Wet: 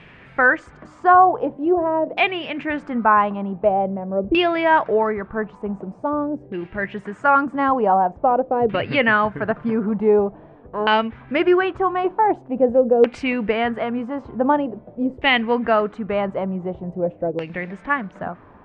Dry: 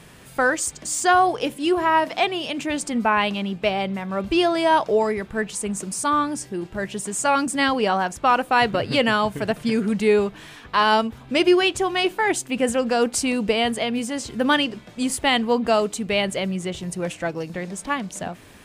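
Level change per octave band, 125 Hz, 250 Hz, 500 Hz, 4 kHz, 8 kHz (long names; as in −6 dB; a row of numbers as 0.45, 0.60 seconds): +0.5 dB, +0.5 dB, +2.5 dB, −5.0 dB, below −30 dB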